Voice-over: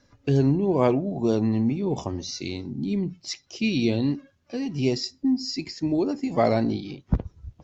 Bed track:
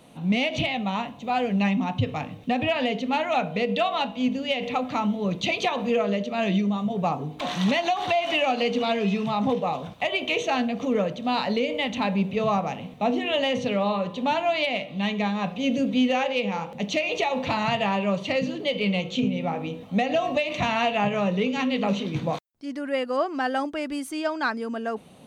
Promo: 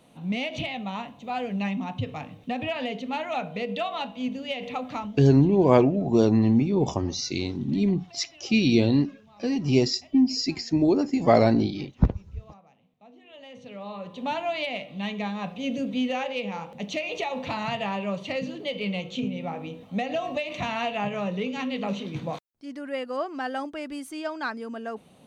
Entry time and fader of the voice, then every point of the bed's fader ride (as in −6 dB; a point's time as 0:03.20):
4.90 s, +3.0 dB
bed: 0:04.97 −5.5 dB
0:05.41 −29 dB
0:13.10 −29 dB
0:14.28 −5 dB